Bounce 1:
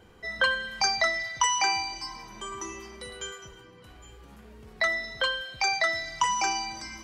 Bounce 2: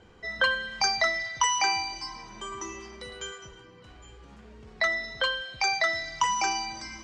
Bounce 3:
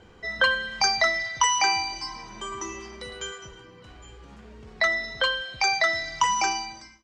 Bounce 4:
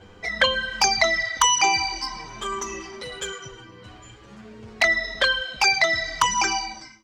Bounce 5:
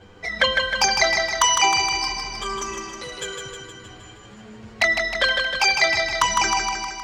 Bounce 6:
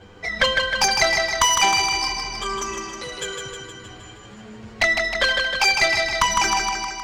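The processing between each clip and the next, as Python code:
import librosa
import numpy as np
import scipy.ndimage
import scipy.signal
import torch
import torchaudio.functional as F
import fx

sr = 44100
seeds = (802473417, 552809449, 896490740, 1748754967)

y1 = scipy.signal.sosfilt(scipy.signal.butter(4, 7500.0, 'lowpass', fs=sr, output='sos'), x)
y2 = fx.fade_out_tail(y1, sr, length_s=0.62)
y2 = y2 * librosa.db_to_amplitude(3.0)
y3 = fx.env_flanger(y2, sr, rest_ms=11.2, full_db=-18.0)
y3 = y3 * librosa.db_to_amplitude(7.0)
y4 = fx.echo_feedback(y3, sr, ms=156, feedback_pct=60, wet_db=-5)
y5 = fx.diode_clip(y4, sr, knee_db=-15.0)
y5 = y5 * librosa.db_to_amplitude(2.0)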